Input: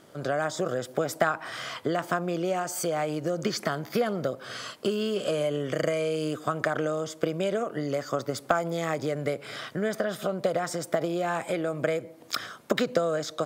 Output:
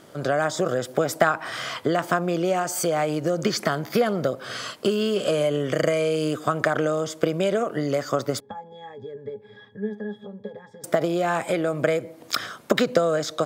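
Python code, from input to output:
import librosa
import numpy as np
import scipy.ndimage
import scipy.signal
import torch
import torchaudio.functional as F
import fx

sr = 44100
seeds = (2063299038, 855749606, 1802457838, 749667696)

y = fx.octave_resonator(x, sr, note='G#', decay_s=0.14, at=(8.4, 10.84))
y = y * librosa.db_to_amplitude(5.0)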